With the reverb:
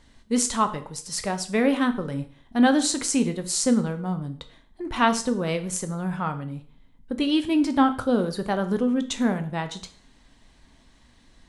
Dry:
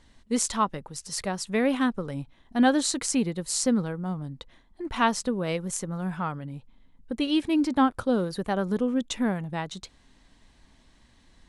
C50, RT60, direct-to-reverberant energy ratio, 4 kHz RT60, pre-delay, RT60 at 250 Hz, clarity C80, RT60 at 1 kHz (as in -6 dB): 13.5 dB, 0.45 s, 8.0 dB, 0.45 s, 6 ms, 0.50 s, 17.5 dB, 0.45 s